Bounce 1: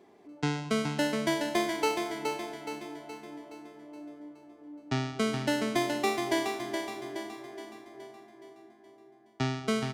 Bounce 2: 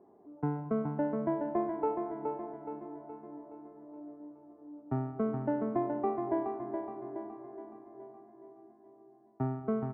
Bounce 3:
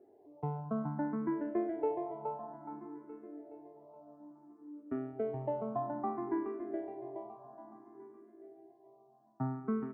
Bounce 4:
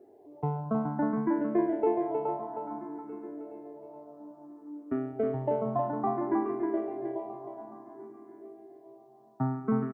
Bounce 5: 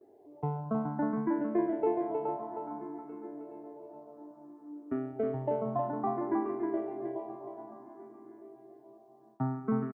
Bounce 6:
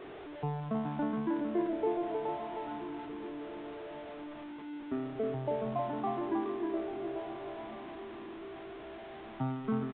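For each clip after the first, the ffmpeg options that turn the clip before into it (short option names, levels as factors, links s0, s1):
-af "lowpass=f=1100:w=0.5412,lowpass=f=1100:w=1.3066,volume=0.794"
-filter_complex "[0:a]equalizer=f=66:w=1.7:g=-9,asplit=2[s0][s1];[s1]afreqshift=0.59[s2];[s0][s2]amix=inputs=2:normalize=1"
-af "aecho=1:1:314:0.531,volume=2"
-filter_complex "[0:a]asplit=2[s0][s1];[s1]adelay=965,lowpass=f=1900:p=1,volume=0.0841,asplit=2[s2][s3];[s3]adelay=965,lowpass=f=1900:p=1,volume=0.44,asplit=2[s4][s5];[s5]adelay=965,lowpass=f=1900:p=1,volume=0.44[s6];[s0][s2][s4][s6]amix=inputs=4:normalize=0,agate=range=0.126:threshold=0.00126:ratio=16:detection=peak,volume=0.75"
-af "aeval=exprs='val(0)+0.5*0.0126*sgn(val(0))':c=same,aresample=8000,aresample=44100,volume=0.668"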